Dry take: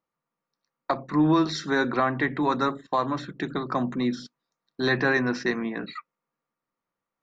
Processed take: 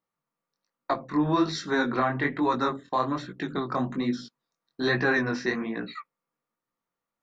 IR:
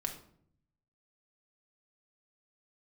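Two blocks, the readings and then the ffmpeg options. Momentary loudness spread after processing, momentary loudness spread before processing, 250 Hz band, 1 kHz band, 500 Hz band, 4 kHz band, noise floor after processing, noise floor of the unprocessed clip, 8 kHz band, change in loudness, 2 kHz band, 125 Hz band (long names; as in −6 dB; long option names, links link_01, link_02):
9 LU, 10 LU, −2.0 dB, −1.0 dB, −1.5 dB, −1.5 dB, below −85 dBFS, below −85 dBFS, can't be measured, −1.5 dB, −1.0 dB, −2.0 dB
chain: -af "flanger=delay=16.5:depth=7.8:speed=1.2,volume=1.5dB"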